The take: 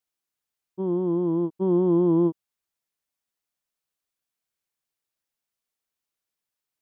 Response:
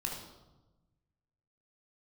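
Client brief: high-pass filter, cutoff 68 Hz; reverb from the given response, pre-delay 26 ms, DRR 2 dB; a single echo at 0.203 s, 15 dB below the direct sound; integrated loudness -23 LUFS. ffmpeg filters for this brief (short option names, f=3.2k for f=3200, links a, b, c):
-filter_complex "[0:a]highpass=68,aecho=1:1:203:0.178,asplit=2[a][b];[1:a]atrim=start_sample=2205,adelay=26[c];[b][c]afir=irnorm=-1:irlink=0,volume=-4dB[d];[a][d]amix=inputs=2:normalize=0,volume=-2dB"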